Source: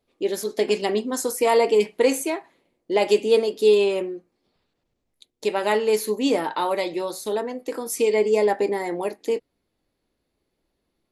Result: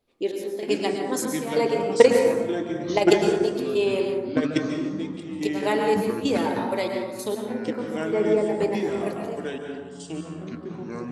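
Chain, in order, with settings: 1.65–3.18 s: transient shaper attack +12 dB, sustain -5 dB; 7.49–8.49 s: low-pass 1 kHz 6 dB/octave; in parallel at -0.5 dB: compression, threshold -24 dBFS, peak gain reduction 19 dB; on the sum: trance gate "xx..xx.x..x." 96 bpm -12 dB; plate-style reverb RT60 1.2 s, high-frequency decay 0.4×, pre-delay 95 ms, DRR 2 dB; ever faster or slower copies 401 ms, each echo -5 st, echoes 3, each echo -6 dB; trim -6 dB

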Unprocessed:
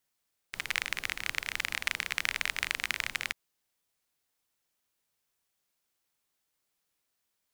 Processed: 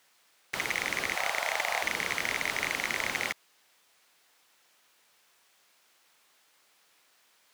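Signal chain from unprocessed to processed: 1.15–1.83 s: resonant low shelf 450 Hz -14 dB, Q 3; overdrive pedal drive 34 dB, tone 3.4 kHz, clips at -7 dBFS; trim -6.5 dB

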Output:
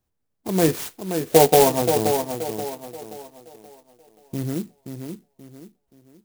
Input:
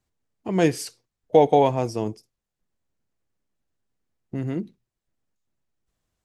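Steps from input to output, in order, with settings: 0.67–1.82 s: doubling 12 ms -4 dB; on a send: tape echo 528 ms, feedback 39%, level -6 dB, low-pass 3.2 kHz; on the sum: sampling jitter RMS 0.1 ms; trim +1 dB

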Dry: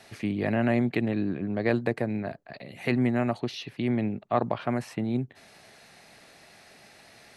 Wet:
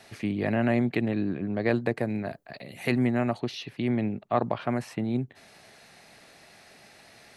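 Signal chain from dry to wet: 2.01–3.05 s: treble shelf 7.3 kHz +11.5 dB

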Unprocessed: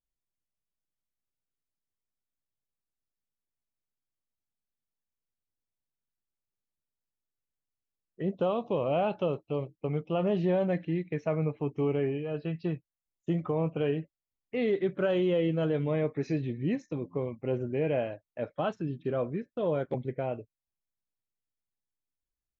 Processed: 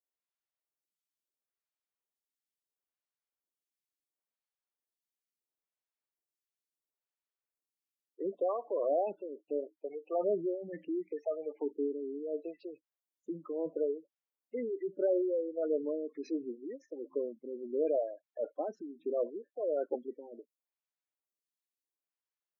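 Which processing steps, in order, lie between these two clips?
high-pass 290 Hz 24 dB/octave; spectral gate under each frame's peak -15 dB strong; lamp-driven phase shifter 0.73 Hz

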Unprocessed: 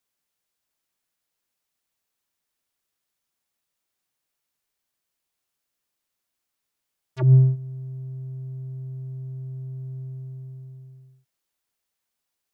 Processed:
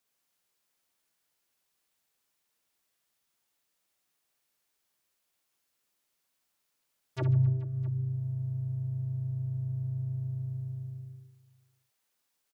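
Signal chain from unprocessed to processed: bass shelf 120 Hz -5 dB; reverse bouncing-ball echo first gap 60 ms, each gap 1.4×, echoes 5; compression 2:1, threshold -34 dBFS, peak gain reduction 13 dB; harmony voices -4 st -9 dB

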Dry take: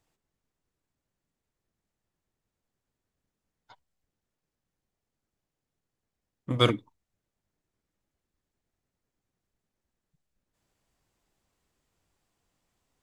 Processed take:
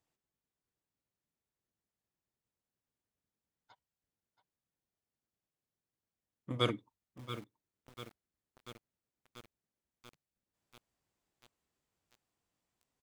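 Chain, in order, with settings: high-pass 78 Hz 6 dB/octave; delay 678 ms -14 dB; bit-crushed delay 687 ms, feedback 80%, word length 6-bit, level -13.5 dB; trim -8.5 dB

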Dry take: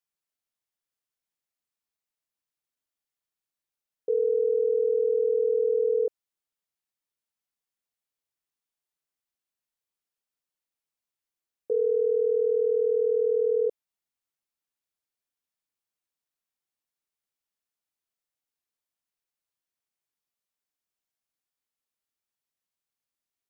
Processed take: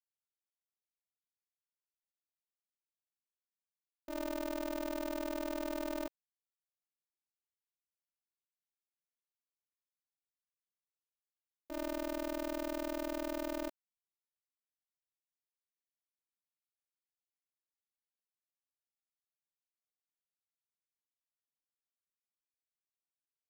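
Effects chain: gate -20 dBFS, range -23 dB; polarity switched at an audio rate 150 Hz; trim +5 dB

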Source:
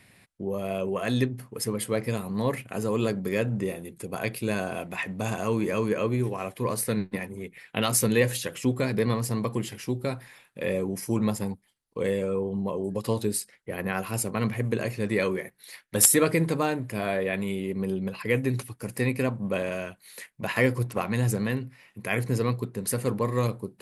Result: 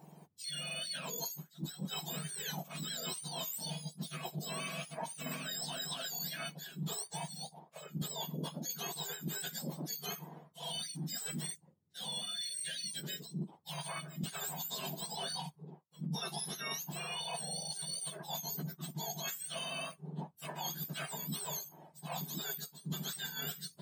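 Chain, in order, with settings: spectrum inverted on a logarithmic axis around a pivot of 1.3 kHz; reverse; compression 20:1, threshold -34 dBFS, peak gain reduction 31.5 dB; reverse; trim -2.5 dB

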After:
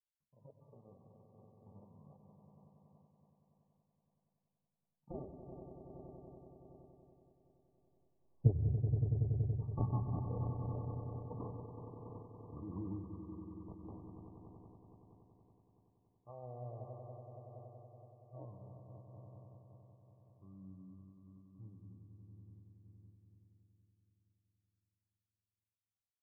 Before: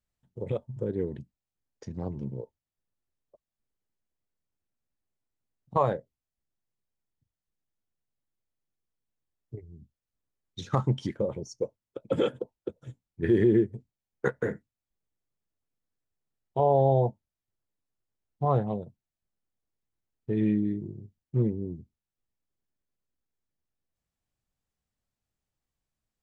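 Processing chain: Doppler pass-by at 8.51 s, 39 m/s, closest 3.2 m; comb 1.3 ms, depth 64%; decimation with a swept rate 31×, swing 100% 0.22 Hz; brick-wall FIR low-pass 1.2 kHz; echo with a slow build-up 94 ms, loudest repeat 5, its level -9 dB; on a send at -11.5 dB: reverberation RT60 1.0 s, pre-delay 122 ms; on the sum: random flutter of the level, depth 60%; trim +14.5 dB

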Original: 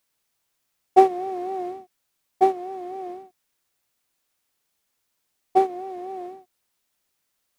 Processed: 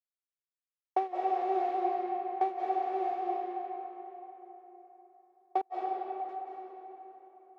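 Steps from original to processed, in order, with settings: expander -35 dBFS; compression 8:1, threshold -25 dBFS, peak gain reduction 16.5 dB; 5.61–6.29 s: inverted gate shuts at -29 dBFS, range -39 dB; band-pass 520–3500 Hz; reverberation RT60 3.8 s, pre-delay 145 ms, DRR -3 dB

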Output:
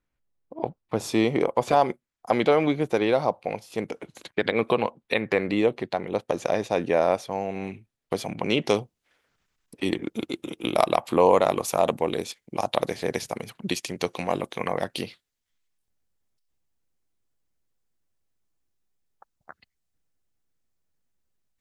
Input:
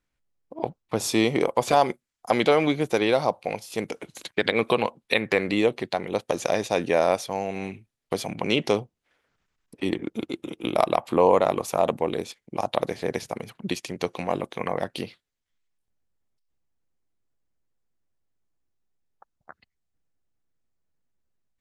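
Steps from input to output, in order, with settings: treble shelf 2.9 kHz -8.5 dB, from 7.67 s -3.5 dB, from 8.69 s +5 dB

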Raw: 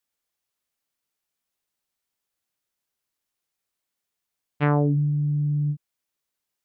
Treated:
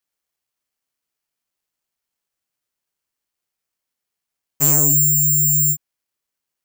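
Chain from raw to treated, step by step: sine folder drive 5 dB, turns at -9.5 dBFS; careless resampling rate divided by 6×, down filtered, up zero stuff; trim -8.5 dB

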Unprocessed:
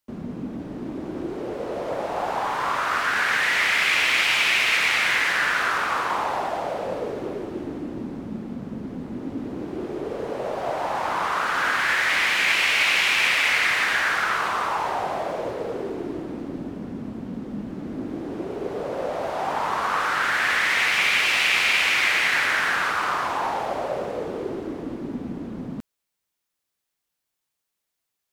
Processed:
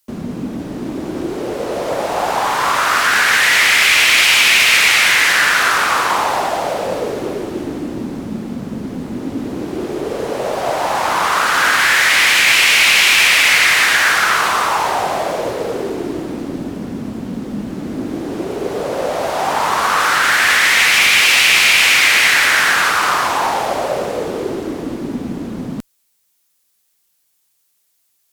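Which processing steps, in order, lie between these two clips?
treble shelf 4 kHz +12 dB; in parallel at -2.5 dB: peak limiter -12 dBFS, peak gain reduction 7.5 dB; on the sum: one-sided clip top -9 dBFS; trim +3 dB

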